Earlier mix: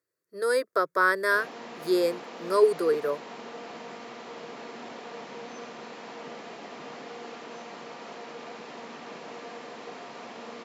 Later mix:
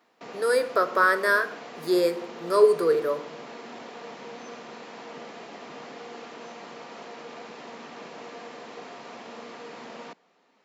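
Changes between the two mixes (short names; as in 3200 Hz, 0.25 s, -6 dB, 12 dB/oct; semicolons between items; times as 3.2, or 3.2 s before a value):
background: entry -1.10 s; reverb: on, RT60 0.65 s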